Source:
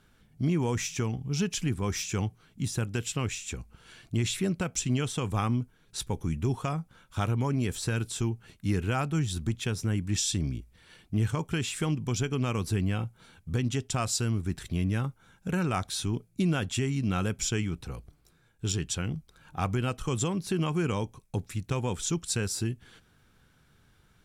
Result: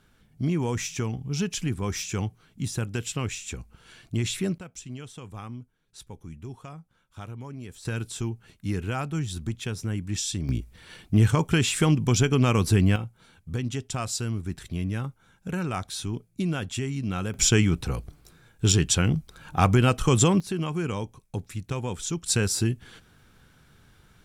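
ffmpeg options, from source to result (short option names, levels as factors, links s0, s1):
-af "asetnsamples=n=441:p=0,asendcmd='4.58 volume volume -11dB;7.85 volume volume -1dB;10.49 volume volume 8dB;12.96 volume volume -1dB;17.34 volume volume 9.5dB;20.4 volume volume -0.5dB;22.26 volume volume 6dB',volume=1.12"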